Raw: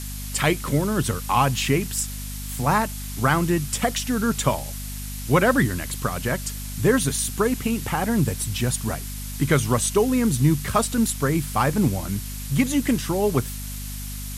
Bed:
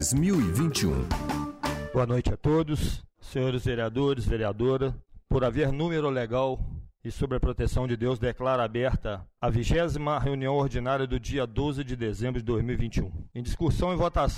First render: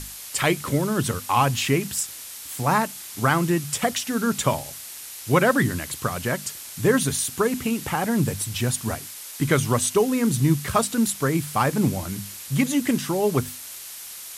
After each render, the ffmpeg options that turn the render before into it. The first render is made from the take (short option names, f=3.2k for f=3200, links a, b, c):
-af "bandreject=f=50:t=h:w=6,bandreject=f=100:t=h:w=6,bandreject=f=150:t=h:w=6,bandreject=f=200:t=h:w=6,bandreject=f=250:t=h:w=6"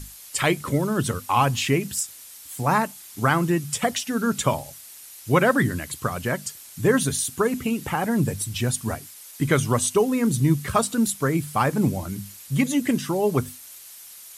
-af "afftdn=nr=8:nf=-38"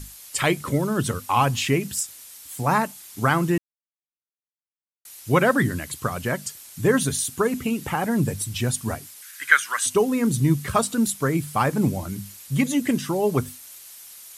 -filter_complex "[0:a]asettb=1/sr,asplit=3[a][b][c];[a]atrim=end=9.224[d];[b]atrim=start=9.22:end=9.86,asetpts=PTS-STARTPTS,afade=t=in:d=0.004:c=qsin,afade=t=out:st=0.636:d=0.004:c=qsin,highpass=f=1.6k:t=q:w=5.6[e];[c]atrim=start=9.856[f];[d][e]acrossfade=d=0.004:c1=hsin:c2=qsin[g];[g][f]acrossfade=d=0.004:c1=qsin:c2=hsin,asplit=3[h][i][j];[h]atrim=end=3.58,asetpts=PTS-STARTPTS,afade=t=out:st=3.576:d=0.004:c=hsin[k];[i]atrim=start=3.58:end=5.05,asetpts=PTS-STARTPTS,volume=0[l];[j]atrim=start=5.05,asetpts=PTS-STARTPTS,afade=t=in:d=0.004:c=hsin[m];[k][l][m]concat=n=3:v=0:a=1"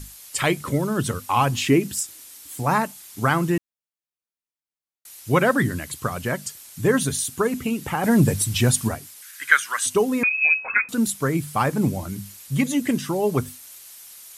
-filter_complex "[0:a]asettb=1/sr,asplit=3[a][b][c];[a]atrim=end=1.524[d];[b]atrim=start=1.52:end=2.6,asetpts=PTS-STARTPTS,afade=t=in:d=0.004:c=qsin,afade=t=out:st=1.076:d=0.004:c=qsin,equalizer=f=310:w=2.5:g=9.5[e];[c]atrim=start=2.596[f];[d][e]acrossfade=d=0.004:c1=hsin:c2=qsin[g];[g][f]acrossfade=d=0.004:c1=qsin:c2=hsin,asplit=3[h][i][j];[h]afade=t=out:st=8.03:d=0.02[k];[i]acontrast=48,afade=t=in:st=8.03:d=0.02,afade=t=out:st=8.87:d=0.02[l];[j]afade=t=in:st=8.87:d=0.02[m];[k][l][m]amix=inputs=3:normalize=0,asettb=1/sr,asplit=3[n][o][p];[n]atrim=end=10.234[q];[o]atrim=start=10.23:end=10.89,asetpts=PTS-STARTPTS,afade=t=in:d=0.004:c=qsin,afade=t=out:st=0.656:d=0.004:c=qsin,lowpass=f=2.3k:t=q:w=0.5098,lowpass=f=2.3k:t=q:w=0.6013,lowpass=f=2.3k:t=q:w=0.9,lowpass=f=2.3k:t=q:w=2.563,afreqshift=-2700[r];[p]atrim=start=10.886[s];[q][r]acrossfade=d=0.004:c1=hsin:c2=qsin[t];[t][s]acrossfade=d=0.004:c1=qsin:c2=hsin"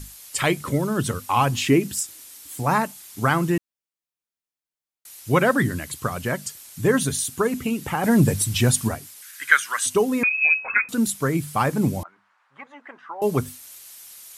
-filter_complex "[0:a]asettb=1/sr,asplit=3[a][b][c];[a]atrim=end=12.034[d];[b]atrim=start=12.03:end=13.22,asetpts=PTS-STARTPTS,afade=t=in:d=0.004:c=qsin,afade=t=out:st=1.186:d=0.004:c=qsin,asuperpass=centerf=1100:order=4:qfactor=1.4[e];[c]atrim=start=13.216[f];[d][e]acrossfade=d=0.004:c1=hsin:c2=qsin[g];[g][f]acrossfade=d=0.004:c1=qsin:c2=hsin"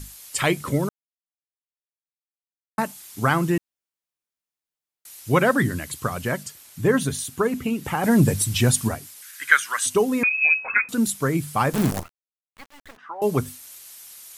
-filter_complex "[0:a]asettb=1/sr,asplit=3[a][b][c];[a]atrim=end=6.434[d];[b]atrim=start=6.43:end=7.85,asetpts=PTS-STARTPTS,afade=t=in:d=0.004:c=qsin,afade=t=out:st=1.416:d=0.004:c=qsin,equalizer=f=8.7k:w=0.43:g=-5[e];[c]atrim=start=7.846[f];[d][e]acrossfade=d=0.004:c1=hsin:c2=qsin[g];[g][f]acrossfade=d=0.004:c1=qsin:c2=hsin,asettb=1/sr,asplit=3[h][i][j];[h]atrim=end=11.734[k];[i]atrim=start=11.73:end=12.97,asetpts=PTS-STARTPTS,afade=t=in:d=0.004:c=qsin,afade=t=out:st=1.236:d=0.004:c=qsin,acrusher=bits=5:dc=4:mix=0:aa=0.000001[l];[j]atrim=start=12.966[m];[k][l]acrossfade=d=0.004:c1=hsin:c2=qsin[n];[n][m]acrossfade=d=0.004:c1=qsin:c2=hsin,asplit=3[o][p][q];[o]atrim=end=0.89,asetpts=PTS-STARTPTS,afade=t=out:st=0.886:d=0.004:c=hsin[r];[p]atrim=start=0.89:end=2.78,asetpts=PTS-STARTPTS,volume=0[s];[q]atrim=start=2.78,asetpts=PTS-STARTPTS,afade=t=in:d=0.004:c=hsin[t];[r][s][t]concat=n=3:v=0:a=1"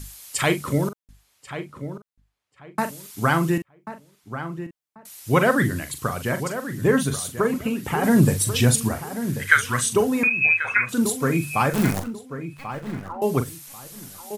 -filter_complex "[0:a]asplit=2[a][b];[b]adelay=42,volume=-10dB[c];[a][c]amix=inputs=2:normalize=0,asplit=2[d][e];[e]adelay=1088,lowpass=f=2k:p=1,volume=-10.5dB,asplit=2[f][g];[g]adelay=1088,lowpass=f=2k:p=1,volume=0.25,asplit=2[h][i];[i]adelay=1088,lowpass=f=2k:p=1,volume=0.25[j];[d][f][h][j]amix=inputs=4:normalize=0"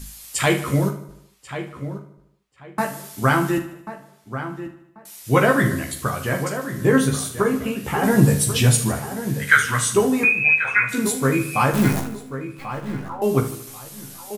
-filter_complex "[0:a]asplit=2[a][b];[b]adelay=15,volume=-3dB[c];[a][c]amix=inputs=2:normalize=0,asplit=2[d][e];[e]aecho=0:1:76|152|228|304|380|456:0.224|0.121|0.0653|0.0353|0.019|0.0103[f];[d][f]amix=inputs=2:normalize=0"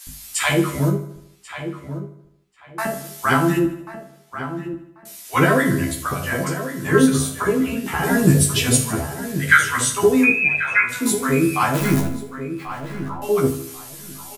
-filter_complex "[0:a]asplit=2[a][b];[b]adelay=12,volume=-2.5dB[c];[a][c]amix=inputs=2:normalize=0,acrossover=split=710[d][e];[d]adelay=70[f];[f][e]amix=inputs=2:normalize=0"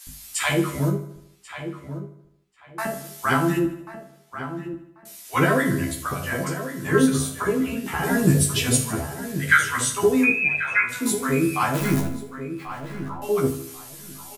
-af "volume=-3.5dB"